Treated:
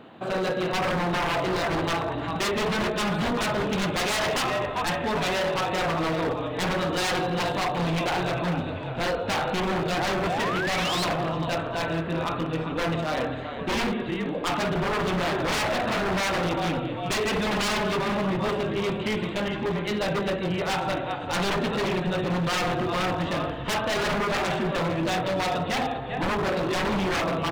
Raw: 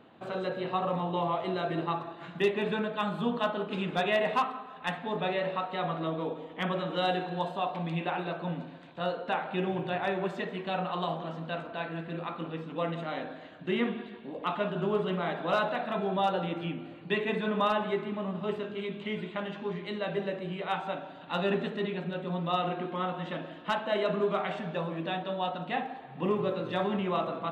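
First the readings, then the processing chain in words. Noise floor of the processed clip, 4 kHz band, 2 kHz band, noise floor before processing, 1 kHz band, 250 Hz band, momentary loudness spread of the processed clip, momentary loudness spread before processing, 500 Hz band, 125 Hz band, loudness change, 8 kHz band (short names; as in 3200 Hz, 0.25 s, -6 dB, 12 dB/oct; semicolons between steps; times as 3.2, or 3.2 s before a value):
-32 dBFS, +9.5 dB, +8.5 dB, -47 dBFS, +5.0 dB, +6.0 dB, 3 LU, 8 LU, +4.5 dB, +7.5 dB, +6.0 dB, n/a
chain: frequency-shifting echo 0.397 s, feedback 55%, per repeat -37 Hz, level -10 dB; painted sound rise, 10.25–11.05, 620–4500 Hz -38 dBFS; wavefolder -29.5 dBFS; gain +9 dB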